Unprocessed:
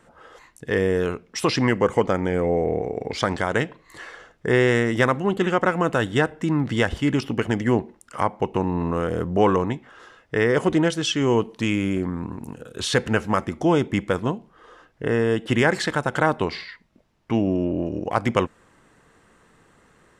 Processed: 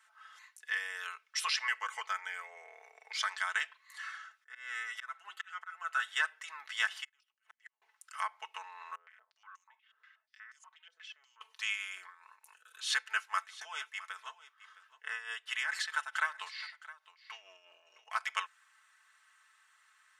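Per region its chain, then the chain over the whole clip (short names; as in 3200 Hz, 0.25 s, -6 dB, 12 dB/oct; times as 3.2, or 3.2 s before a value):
4.03–6.08 bell 1400 Hz +7.5 dB 0.4 oct + comb 6.1 ms, depth 45% + auto swell 0.712 s
7.04–7.82 HPF 280 Hz + auto swell 0.328 s + flipped gate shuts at -26 dBFS, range -35 dB
8.95–11.41 compressor 8:1, threshold -27 dBFS + stepped band-pass 8.3 Hz 430–6700 Hz
12.07–18.11 tremolo 4.6 Hz, depth 64% + echo 0.663 s -17.5 dB
whole clip: inverse Chebyshev high-pass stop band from 210 Hz, stop band 80 dB; notch 7700 Hz, Q 22; comb 4.6 ms, depth 62%; gain -6 dB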